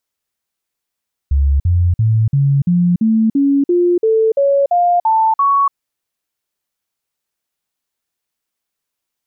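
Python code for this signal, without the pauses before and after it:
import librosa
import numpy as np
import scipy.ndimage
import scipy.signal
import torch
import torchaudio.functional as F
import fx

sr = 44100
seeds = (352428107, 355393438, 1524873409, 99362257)

y = fx.stepped_sweep(sr, from_hz=69.8, direction='up', per_octave=3, tones=13, dwell_s=0.29, gap_s=0.05, level_db=-9.5)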